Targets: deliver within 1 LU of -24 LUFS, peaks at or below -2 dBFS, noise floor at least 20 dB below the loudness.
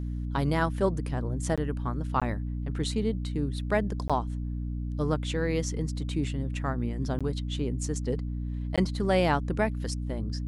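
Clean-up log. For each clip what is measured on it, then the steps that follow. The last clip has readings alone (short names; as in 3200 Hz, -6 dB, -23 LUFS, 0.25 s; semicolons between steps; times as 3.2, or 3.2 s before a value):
dropouts 5; longest dropout 16 ms; hum 60 Hz; harmonics up to 300 Hz; hum level -30 dBFS; loudness -30.0 LUFS; peak -12.0 dBFS; loudness target -24.0 LUFS
-> interpolate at 1.56/2.2/4.08/7.19/8.76, 16 ms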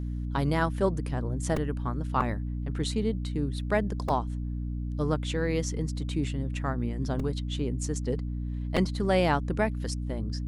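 dropouts 0; hum 60 Hz; harmonics up to 300 Hz; hum level -30 dBFS
-> de-hum 60 Hz, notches 5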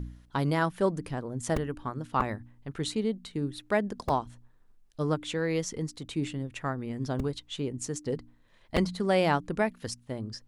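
hum none; loudness -31.5 LUFS; peak -12.0 dBFS; loudness target -24.0 LUFS
-> gain +7.5 dB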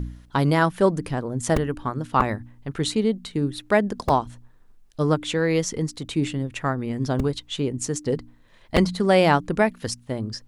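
loudness -24.0 LUFS; peak -4.5 dBFS; noise floor -53 dBFS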